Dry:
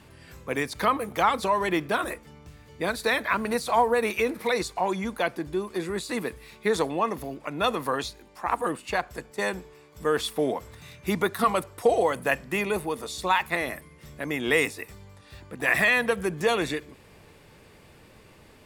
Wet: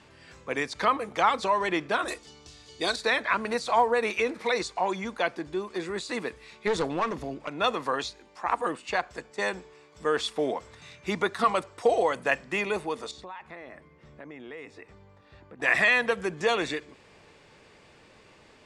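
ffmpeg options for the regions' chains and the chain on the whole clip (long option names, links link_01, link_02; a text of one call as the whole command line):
ffmpeg -i in.wav -filter_complex "[0:a]asettb=1/sr,asplit=3[link_01][link_02][link_03];[link_01]atrim=end=2.084[link_04];[link_02]atrim=start=2.08:end=2.96,asetpts=PTS-STARTPTS,afade=type=in:duration=0.004:curve=qsin,afade=type=out:start_time=0.876:duration=0.004:curve=qsin,highshelf=frequency=2900:width_type=q:width=1.5:gain=10,aecho=1:1:2.7:0.42,atrim=end_sample=38808[link_05];[link_03]atrim=start=2.956[link_06];[link_04][link_05]acrossfade=duration=0.004:curve1=hsin:curve2=qsin[link_07];[link_07][link_06]acrossfade=duration=0.004:curve1=qsin:curve2=hsin,asettb=1/sr,asplit=3[link_08][link_09][link_10];[link_08]atrim=end=6.674[link_11];[link_09]atrim=start=6.67:end=7.49,asetpts=PTS-STARTPTS,afade=type=in:duration=0.004:curve=qsin,afade=type=out:start_time=0.816:duration=0.004:curve=qsin,lowshelf=frequency=260:gain=8.5,aeval=exprs='clip(val(0),-1,0.0501)':channel_layout=same[link_12];[link_10]atrim=start=7.486[link_13];[link_11][link_12]acrossfade=duration=0.004:curve1=hsin:curve2=qsin[link_14];[link_14][link_13]acrossfade=duration=0.004:curve1=qsin:curve2=hsin,asettb=1/sr,asplit=3[link_15][link_16][link_17];[link_15]atrim=end=13.114[link_18];[link_16]atrim=start=13.11:end=15.62,asetpts=PTS-STARTPTS,afade=type=in:duration=0.004:curve=qsin,afade=type=out:start_time=2.506:duration=0.004:curve=qsin,lowpass=frequency=1100:poles=1,acompressor=threshold=-39dB:ratio=4:attack=3.2:release=140:knee=1:detection=peak[link_19];[link_17]atrim=start=15.616[link_20];[link_18][link_19]acrossfade=duration=0.004:curve1=hsin:curve2=qsin[link_21];[link_21][link_20]acrossfade=duration=0.004:curve1=qsin:curve2=hsin,lowpass=frequency=7700:width=0.5412,lowpass=frequency=7700:width=1.3066,lowshelf=frequency=220:gain=-9.5" out.wav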